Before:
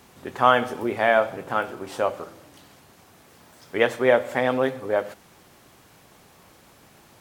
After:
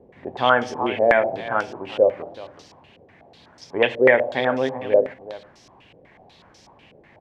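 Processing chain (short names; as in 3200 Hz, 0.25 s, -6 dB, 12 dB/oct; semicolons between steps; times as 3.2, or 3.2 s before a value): bell 1300 Hz -11 dB 0.45 oct; on a send: echo 0.376 s -13.5 dB; on the sum: stepped low-pass 8.1 Hz 510–5500 Hz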